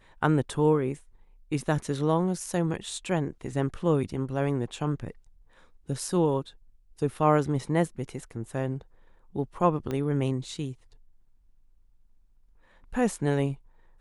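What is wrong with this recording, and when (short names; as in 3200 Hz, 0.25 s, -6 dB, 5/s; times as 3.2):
9.91 pop -19 dBFS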